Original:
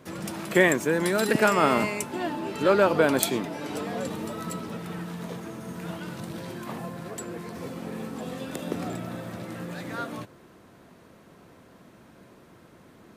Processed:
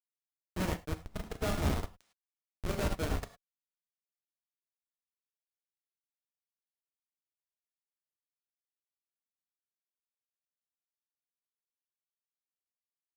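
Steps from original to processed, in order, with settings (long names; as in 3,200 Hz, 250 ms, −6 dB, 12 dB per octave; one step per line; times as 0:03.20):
high-pass filter 240 Hz 6 dB per octave
comb filter 6.4 ms, depth 55%
on a send: feedback echo with a low-pass in the loop 83 ms, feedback 32%, low-pass 1,300 Hz, level −18.5 dB
on the sum: comparator with hysteresis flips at −15.5 dBFS
reverb whose tail is shaped and stops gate 130 ms flat, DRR 0.5 dB
sample-rate reduction 14,000 Hz
expander for the loud parts 2.5 to 1, over −37 dBFS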